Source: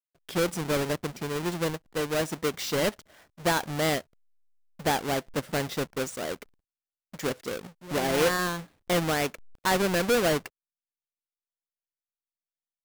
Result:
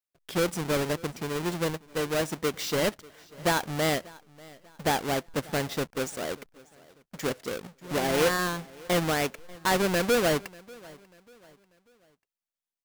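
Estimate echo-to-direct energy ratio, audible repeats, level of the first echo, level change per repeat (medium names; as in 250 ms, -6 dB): -22.5 dB, 2, -23.0 dB, -8.0 dB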